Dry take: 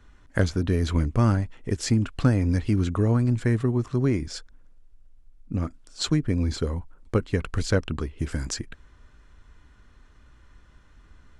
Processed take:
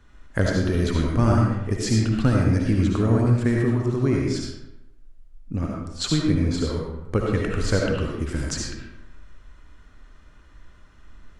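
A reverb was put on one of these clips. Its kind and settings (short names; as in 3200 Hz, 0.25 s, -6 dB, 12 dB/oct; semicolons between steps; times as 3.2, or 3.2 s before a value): digital reverb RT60 0.89 s, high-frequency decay 0.7×, pre-delay 35 ms, DRR -1.5 dB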